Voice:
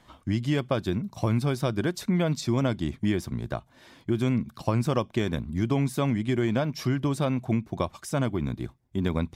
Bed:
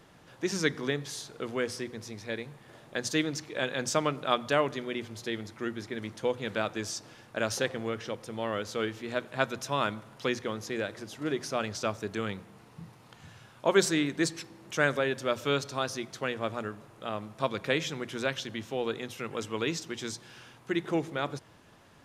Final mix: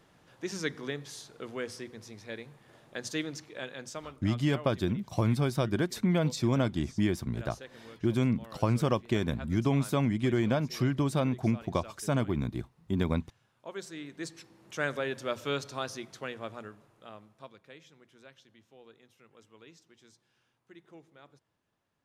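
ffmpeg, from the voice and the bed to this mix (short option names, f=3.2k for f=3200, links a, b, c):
-filter_complex "[0:a]adelay=3950,volume=-2dB[a];[1:a]volume=8dB,afade=t=out:st=3.28:d=0.87:silence=0.251189,afade=t=in:st=13.87:d=1.24:silence=0.211349,afade=t=out:st=15.82:d=1.79:silence=0.105925[b];[a][b]amix=inputs=2:normalize=0"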